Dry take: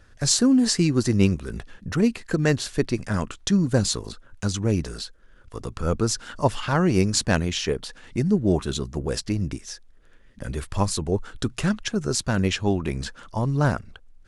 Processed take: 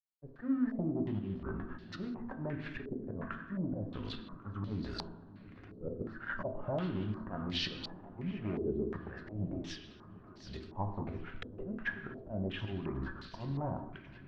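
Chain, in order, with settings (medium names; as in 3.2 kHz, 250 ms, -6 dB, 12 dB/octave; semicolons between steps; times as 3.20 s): flange 0.26 Hz, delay 3.9 ms, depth 1.7 ms, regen +70%; low-pass that closes with the level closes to 1 kHz, closed at -22.5 dBFS; expander -41 dBFS; slow attack 322 ms; compression 5:1, threshold -35 dBFS, peak gain reduction 13.5 dB; hard clipper -32.5 dBFS, distortion -17 dB; band-stop 460 Hz, Q 12; crossover distortion -58 dBFS; multi-head delay 364 ms, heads second and third, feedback 68%, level -19 dB; on a send at -4.5 dB: reverberation RT60 1.1 s, pre-delay 3 ms; on the sum: step-sequenced low-pass 2.8 Hz 450–4400 Hz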